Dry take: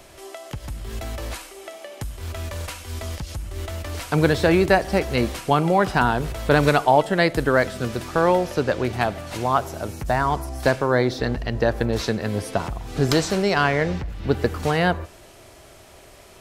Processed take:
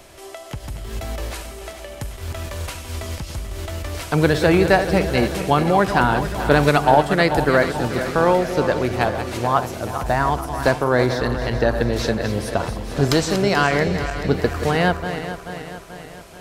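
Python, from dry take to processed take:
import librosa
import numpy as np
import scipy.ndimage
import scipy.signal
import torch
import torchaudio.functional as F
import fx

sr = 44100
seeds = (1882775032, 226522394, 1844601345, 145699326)

y = fx.reverse_delay_fb(x, sr, ms=217, feedback_pct=72, wet_db=-9.5)
y = y * 10.0 ** (1.5 / 20.0)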